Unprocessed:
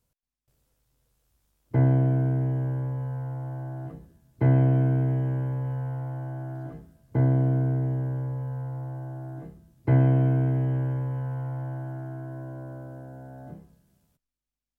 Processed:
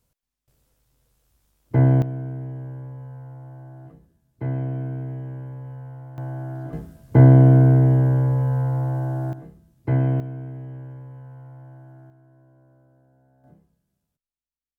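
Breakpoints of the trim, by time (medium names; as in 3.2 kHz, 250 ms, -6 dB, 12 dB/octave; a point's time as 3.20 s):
+4.5 dB
from 2.02 s -6.5 dB
from 6.18 s +3.5 dB
from 6.73 s +11 dB
from 9.33 s -0.5 dB
from 10.20 s -10.5 dB
from 12.10 s -17.5 dB
from 13.44 s -10.5 dB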